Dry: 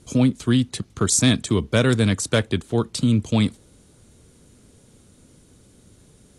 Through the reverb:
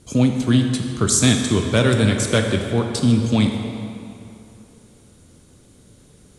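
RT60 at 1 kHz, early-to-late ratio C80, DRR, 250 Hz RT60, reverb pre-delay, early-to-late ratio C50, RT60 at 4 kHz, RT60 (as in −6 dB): 2.7 s, 5.0 dB, 3.0 dB, 2.4 s, 14 ms, 4.0 dB, 1.9 s, 2.6 s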